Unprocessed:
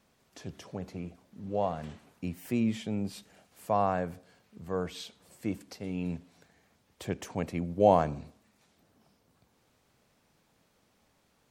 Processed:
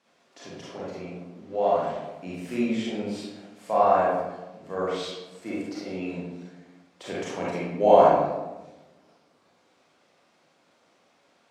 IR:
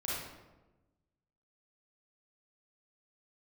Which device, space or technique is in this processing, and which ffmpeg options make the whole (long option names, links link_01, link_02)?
supermarket ceiling speaker: -filter_complex "[0:a]highpass=310,lowpass=6800[link_01];[1:a]atrim=start_sample=2205[link_02];[link_01][link_02]afir=irnorm=-1:irlink=0,volume=4dB"